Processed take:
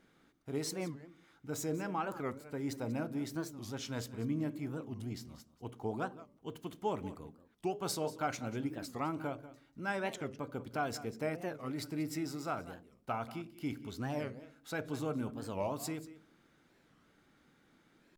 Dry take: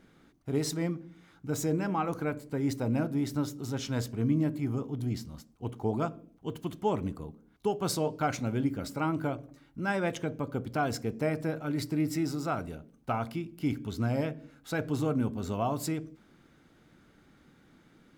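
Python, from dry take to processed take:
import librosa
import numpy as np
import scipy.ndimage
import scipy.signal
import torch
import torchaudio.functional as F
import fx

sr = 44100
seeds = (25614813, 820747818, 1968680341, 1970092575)

y = fx.low_shelf(x, sr, hz=280.0, db=-7.0)
y = y + 10.0 ** (-16.0 / 20.0) * np.pad(y, (int(189 * sr / 1000.0), 0))[:len(y)]
y = fx.record_warp(y, sr, rpm=45.0, depth_cents=250.0)
y = F.gain(torch.from_numpy(y), -4.5).numpy()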